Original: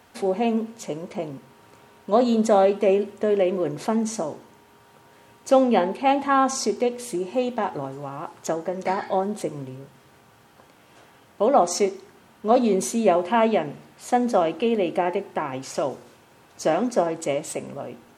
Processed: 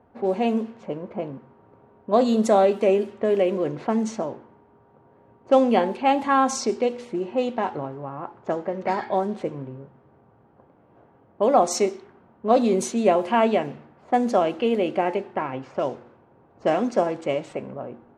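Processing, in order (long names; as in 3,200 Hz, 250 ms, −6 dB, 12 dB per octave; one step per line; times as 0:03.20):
low-pass that shuts in the quiet parts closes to 740 Hz, open at −17 dBFS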